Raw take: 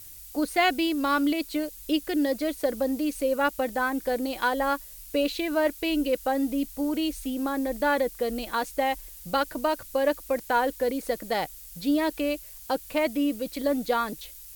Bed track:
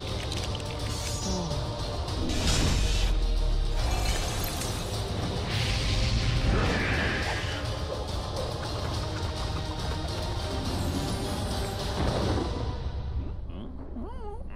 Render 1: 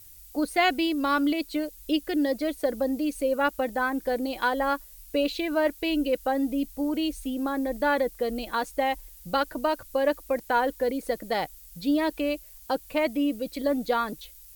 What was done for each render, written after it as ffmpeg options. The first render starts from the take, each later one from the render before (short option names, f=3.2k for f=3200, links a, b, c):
-af "afftdn=nr=6:nf=-45"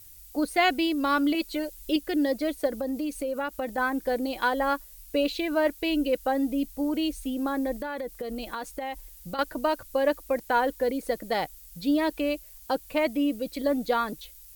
-filter_complex "[0:a]asettb=1/sr,asplit=3[a][b][c];[a]atrim=end=1.344[d];[b]atrim=start=1.34:end=1.96,asetpts=PTS-STARTPTS,afade=t=in:d=0.004:c=qsin,afade=t=out:st=0.616:d=0.004:c=qsin,aecho=1:1:5.4:0.65,atrim=end_sample=27342[e];[c]atrim=start=1.956[f];[d][e]acrossfade=d=0.004:c1=hsin:c2=qsin[g];[g][f]acrossfade=d=0.004:c1=qsin:c2=hsin,asettb=1/sr,asplit=3[h][i][j];[h]atrim=end=2.674[k];[i]atrim=start=2.67:end=3.78,asetpts=PTS-STARTPTS,afade=t=in:d=0.004:c=qsin,afade=t=out:st=1.106:d=0.004:c=qsin,acompressor=threshold=-26dB:ratio=6:attack=3.2:release=140:knee=1:detection=peak[l];[j]atrim=start=3.776[m];[k][l]acrossfade=d=0.004:c1=hsin:c2=qsin[n];[n][m]acrossfade=d=0.004:c1=qsin:c2=hsin,asettb=1/sr,asplit=3[o][p][q];[o]atrim=end=7.784[r];[p]atrim=start=7.78:end=9.39,asetpts=PTS-STARTPTS,afade=t=in:d=0.004:c=qsin,afade=t=out:st=1.606:d=0.004:c=qsin,acompressor=threshold=-29dB:ratio=12:attack=3.2:release=140:knee=1:detection=peak[s];[q]atrim=start=9.386[t];[r][s]acrossfade=d=0.004:c1=hsin:c2=qsin[u];[u][t]acrossfade=d=0.004:c1=qsin:c2=hsin"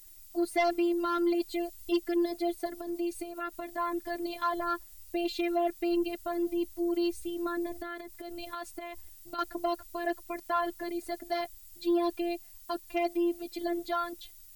-af "afftfilt=real='hypot(re,im)*cos(PI*b)':imag='0':win_size=512:overlap=0.75,asoftclip=type=tanh:threshold=-18dB"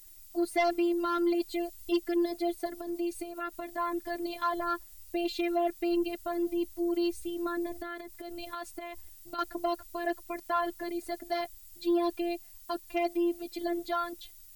-af anull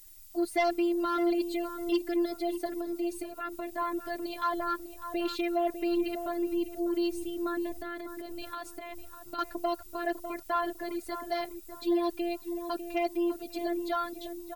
-filter_complex "[0:a]asplit=2[a][b];[b]adelay=600,lowpass=f=1.3k:p=1,volume=-8.5dB,asplit=2[c][d];[d]adelay=600,lowpass=f=1.3k:p=1,volume=0.33,asplit=2[e][f];[f]adelay=600,lowpass=f=1.3k:p=1,volume=0.33,asplit=2[g][h];[h]adelay=600,lowpass=f=1.3k:p=1,volume=0.33[i];[a][c][e][g][i]amix=inputs=5:normalize=0"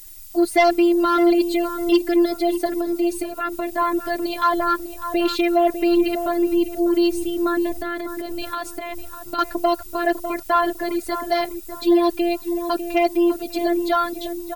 -af "volume=11.5dB"